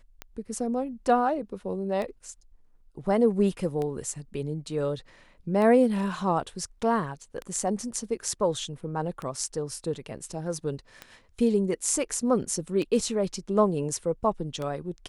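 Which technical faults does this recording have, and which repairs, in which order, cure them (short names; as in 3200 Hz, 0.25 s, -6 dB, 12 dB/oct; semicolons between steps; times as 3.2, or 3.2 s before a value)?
tick 33 1/3 rpm -20 dBFS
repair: de-click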